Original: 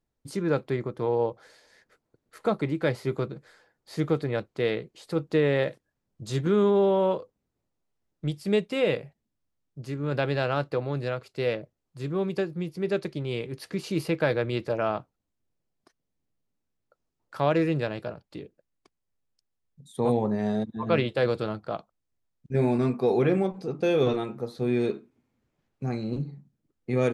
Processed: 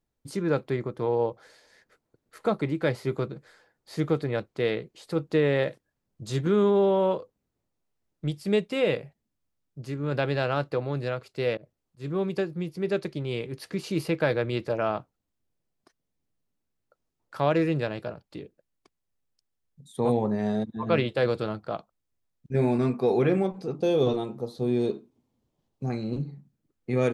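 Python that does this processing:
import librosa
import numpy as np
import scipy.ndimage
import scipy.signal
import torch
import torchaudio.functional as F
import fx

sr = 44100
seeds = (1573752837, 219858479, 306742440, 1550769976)

y = fx.auto_swell(x, sr, attack_ms=129.0, at=(11.57, 12.12))
y = fx.band_shelf(y, sr, hz=1800.0, db=-9.0, octaves=1.2, at=(23.75, 25.9))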